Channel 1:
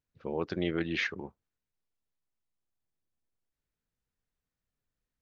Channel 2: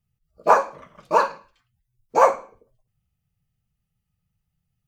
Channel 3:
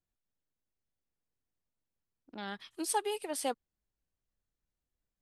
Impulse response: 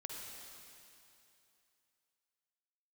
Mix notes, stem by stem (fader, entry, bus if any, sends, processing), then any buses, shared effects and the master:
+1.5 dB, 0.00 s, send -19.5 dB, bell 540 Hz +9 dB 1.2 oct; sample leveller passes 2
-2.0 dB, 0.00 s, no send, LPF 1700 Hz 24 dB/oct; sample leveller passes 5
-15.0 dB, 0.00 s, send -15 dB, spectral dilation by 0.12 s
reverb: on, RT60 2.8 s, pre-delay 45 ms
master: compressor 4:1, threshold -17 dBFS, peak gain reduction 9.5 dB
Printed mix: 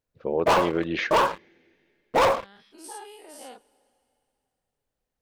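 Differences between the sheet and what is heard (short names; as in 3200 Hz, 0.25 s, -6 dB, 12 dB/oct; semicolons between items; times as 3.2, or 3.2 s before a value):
stem 1: missing sample leveller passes 2; stem 2 -2.0 dB -> -11.0 dB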